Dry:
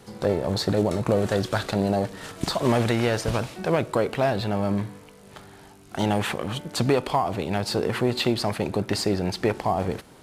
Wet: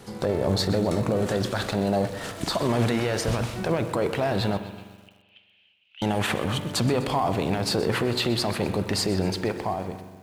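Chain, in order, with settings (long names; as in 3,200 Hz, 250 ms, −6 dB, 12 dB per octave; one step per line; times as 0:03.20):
fade-out on the ending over 1.25 s
brickwall limiter −18.5 dBFS, peak gain reduction 8.5 dB
0:04.57–0:06.02: flat-topped band-pass 2,800 Hz, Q 4.2
spring reverb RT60 1.5 s, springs 42 ms, chirp 40 ms, DRR 11.5 dB
feedback echo at a low word length 126 ms, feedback 55%, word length 8 bits, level −15 dB
level +3 dB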